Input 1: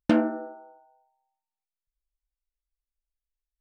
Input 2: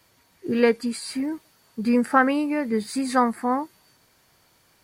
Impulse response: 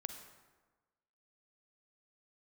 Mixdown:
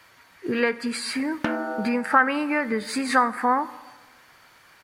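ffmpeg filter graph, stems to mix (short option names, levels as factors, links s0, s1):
-filter_complex "[0:a]acompressor=threshold=0.0398:ratio=6,adelay=1350,volume=1.19[s0];[1:a]acompressor=threshold=0.0631:ratio=5,volume=0.668,asplit=2[s1][s2];[s2]volume=0.596[s3];[2:a]atrim=start_sample=2205[s4];[s3][s4]afir=irnorm=-1:irlink=0[s5];[s0][s1][s5]amix=inputs=3:normalize=0,equalizer=f=1600:t=o:w=2.3:g=13.5"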